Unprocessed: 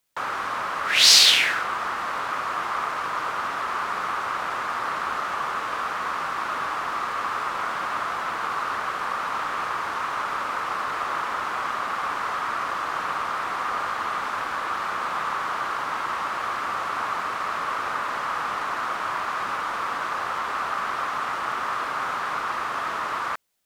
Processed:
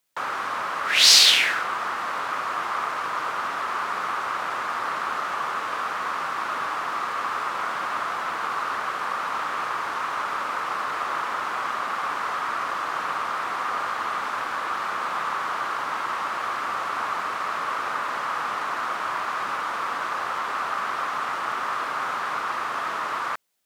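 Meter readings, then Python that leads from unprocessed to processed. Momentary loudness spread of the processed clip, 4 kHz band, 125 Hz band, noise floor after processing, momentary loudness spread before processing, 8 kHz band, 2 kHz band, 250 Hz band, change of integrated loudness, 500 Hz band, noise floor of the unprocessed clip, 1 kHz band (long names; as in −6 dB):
1 LU, 0.0 dB, can't be measured, −30 dBFS, 1 LU, 0.0 dB, 0.0 dB, −1.0 dB, 0.0 dB, −0.5 dB, −30 dBFS, 0.0 dB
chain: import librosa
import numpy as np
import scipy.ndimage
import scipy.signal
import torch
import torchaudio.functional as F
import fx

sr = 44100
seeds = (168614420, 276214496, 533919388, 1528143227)

y = fx.highpass(x, sr, hz=140.0, slope=6)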